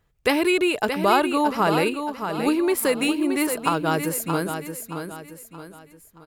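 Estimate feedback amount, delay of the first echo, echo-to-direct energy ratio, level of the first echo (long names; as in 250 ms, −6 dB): 39%, 624 ms, −7.0 dB, −7.5 dB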